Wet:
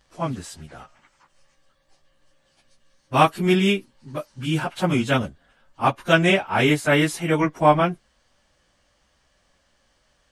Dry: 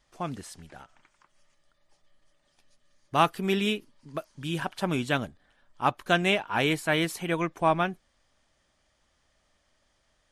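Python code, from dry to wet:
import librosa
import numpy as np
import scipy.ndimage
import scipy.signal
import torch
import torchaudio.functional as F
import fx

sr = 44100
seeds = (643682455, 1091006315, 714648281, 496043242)

y = fx.pitch_bins(x, sr, semitones=-1.0)
y = F.gain(torch.from_numpy(y), 9.0).numpy()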